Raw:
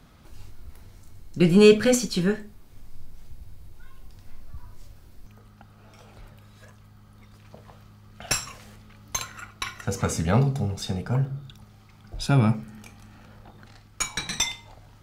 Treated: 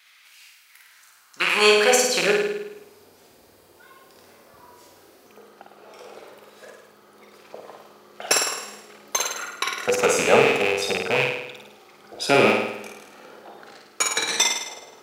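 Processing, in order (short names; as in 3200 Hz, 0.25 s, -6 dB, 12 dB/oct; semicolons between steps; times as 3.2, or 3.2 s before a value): rattling part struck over -24 dBFS, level -16 dBFS; on a send: flutter echo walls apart 9 m, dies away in 0.84 s; on the sum: vibrato 0.31 Hz 5.4 cents; high-pass sweep 2200 Hz -> 430 Hz, 0.64–2.62; gain +4.5 dB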